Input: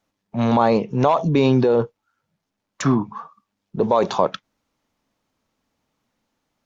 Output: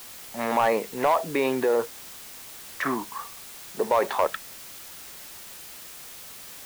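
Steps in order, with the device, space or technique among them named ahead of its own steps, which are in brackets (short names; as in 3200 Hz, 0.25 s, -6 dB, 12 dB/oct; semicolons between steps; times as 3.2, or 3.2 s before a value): drive-through speaker (BPF 420–2800 Hz; bell 1900 Hz +12 dB 0.44 oct; hard clip -10.5 dBFS, distortion -17 dB; white noise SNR 14 dB); gain -3 dB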